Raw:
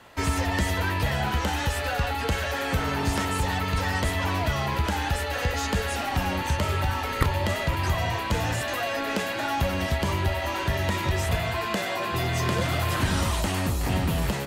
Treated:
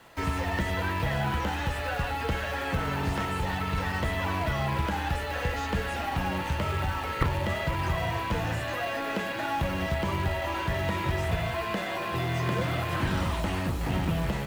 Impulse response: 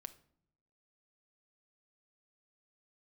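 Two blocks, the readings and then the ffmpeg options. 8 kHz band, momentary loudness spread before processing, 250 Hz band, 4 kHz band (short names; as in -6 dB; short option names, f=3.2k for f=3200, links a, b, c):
-10.0 dB, 2 LU, -2.5 dB, -5.5 dB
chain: -filter_complex "[0:a]acrusher=bits=3:mode=log:mix=0:aa=0.000001,acrossover=split=3400[a][b];[b]acompressor=threshold=-44dB:ratio=4:attack=1:release=60[c];[a][c]amix=inputs=2:normalize=0[d];[1:a]atrim=start_sample=2205[e];[d][e]afir=irnorm=-1:irlink=0,volume=2.5dB"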